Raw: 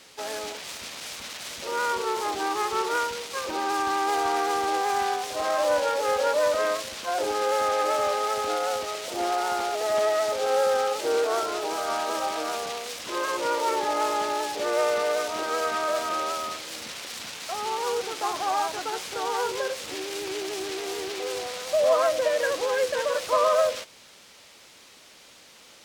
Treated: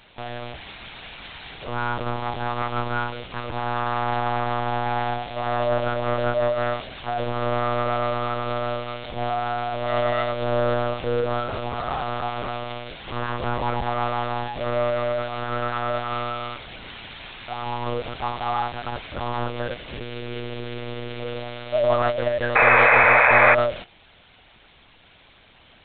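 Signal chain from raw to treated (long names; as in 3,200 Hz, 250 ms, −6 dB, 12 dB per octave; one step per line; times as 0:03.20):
one-pitch LPC vocoder at 8 kHz 120 Hz
sound drawn into the spectrogram noise, 0:22.55–0:23.55, 440–2,600 Hz −16 dBFS
level +1 dB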